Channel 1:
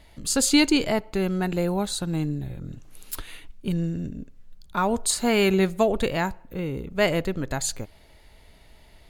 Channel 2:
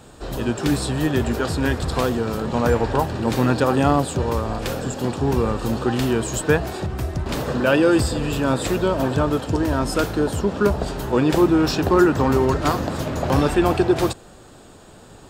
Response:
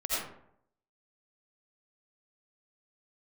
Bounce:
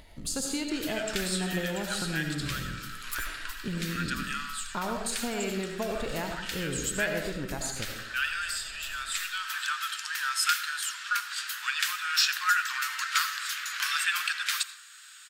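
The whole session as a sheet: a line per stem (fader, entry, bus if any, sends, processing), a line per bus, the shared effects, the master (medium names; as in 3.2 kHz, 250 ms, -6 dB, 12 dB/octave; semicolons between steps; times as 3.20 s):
-5.5 dB, 0.00 s, send -6.5 dB, compression 6:1, threshold -28 dBFS, peak gain reduction 14 dB
+3.0 dB, 0.50 s, send -20 dB, steep high-pass 1.4 kHz 48 dB/octave; auto duck -9 dB, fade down 1.70 s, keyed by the first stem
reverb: on, RT60 0.70 s, pre-delay 45 ms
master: upward compressor, threshold -49 dBFS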